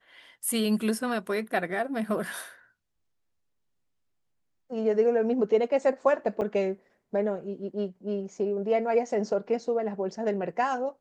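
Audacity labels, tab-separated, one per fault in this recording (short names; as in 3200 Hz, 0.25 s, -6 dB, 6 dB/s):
6.410000	6.420000	gap 7.3 ms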